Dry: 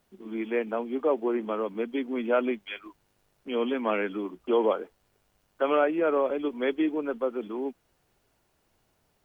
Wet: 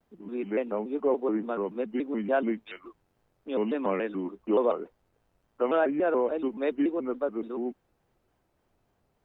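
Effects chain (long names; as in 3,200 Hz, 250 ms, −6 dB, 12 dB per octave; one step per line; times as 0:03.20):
high-shelf EQ 2,100 Hz −11.5 dB
pitch modulation by a square or saw wave square 3.5 Hz, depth 160 cents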